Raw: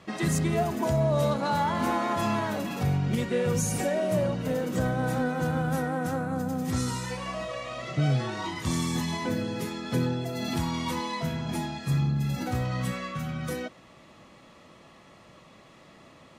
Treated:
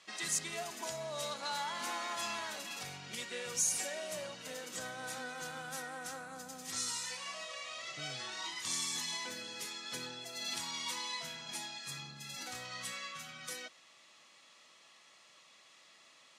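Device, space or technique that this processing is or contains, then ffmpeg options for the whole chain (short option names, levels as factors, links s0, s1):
piezo pickup straight into a mixer: -af "lowpass=6900,aderivative,volume=1.88"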